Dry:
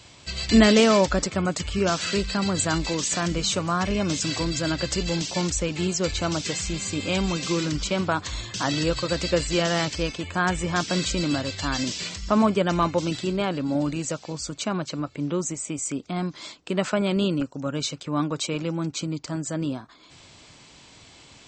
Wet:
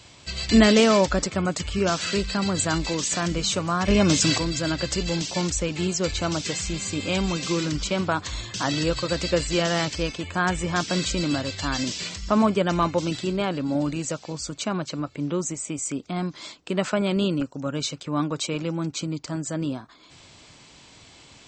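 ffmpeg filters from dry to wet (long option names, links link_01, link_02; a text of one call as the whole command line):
ffmpeg -i in.wav -filter_complex "[0:a]asettb=1/sr,asplit=3[link_01][link_02][link_03];[link_01]atrim=end=3.884[link_04];[link_02]atrim=start=3.88:end=4.38,asetpts=PTS-STARTPTS,afade=type=in:duration=0.004:curve=qsin,afade=type=out:start_time=0.496:duration=0.004:curve=qsin,acontrast=62[link_05];[link_03]atrim=start=4.376[link_06];[link_04][link_05]acrossfade=duration=0.004:curve1=hsin:curve2=qsin[link_07];[link_07][link_06]acrossfade=duration=0.004:curve1=qsin:curve2=hsin" out.wav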